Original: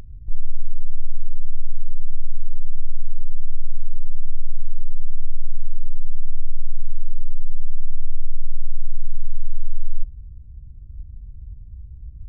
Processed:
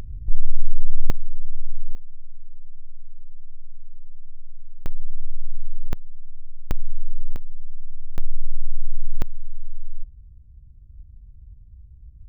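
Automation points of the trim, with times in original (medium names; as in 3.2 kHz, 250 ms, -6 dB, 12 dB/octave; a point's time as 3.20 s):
+4 dB
from 1.10 s -2.5 dB
from 1.95 s -15 dB
from 4.86 s -3.5 dB
from 5.93 s -13.5 dB
from 6.71 s -2 dB
from 7.36 s -9 dB
from 8.18 s -0.5 dB
from 9.22 s -7.5 dB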